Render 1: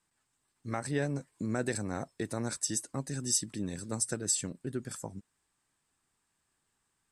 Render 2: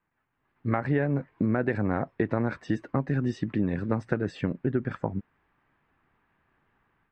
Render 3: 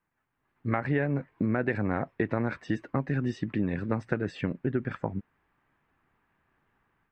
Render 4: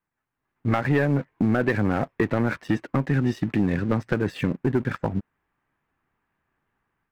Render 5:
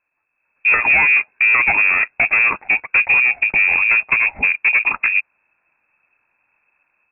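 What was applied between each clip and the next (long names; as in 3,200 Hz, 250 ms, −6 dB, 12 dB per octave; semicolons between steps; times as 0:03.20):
automatic gain control gain up to 9.5 dB; low-pass filter 2,300 Hz 24 dB per octave; downward compressor 6 to 1, threshold −24 dBFS, peak gain reduction 8 dB; level +3 dB
dynamic equaliser 2,400 Hz, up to +5 dB, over −48 dBFS, Q 1.2; level −2 dB
leveller curve on the samples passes 2
low-shelf EQ 110 Hz +9.5 dB; gain into a clipping stage and back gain 17.5 dB; voice inversion scrambler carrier 2,600 Hz; level +7 dB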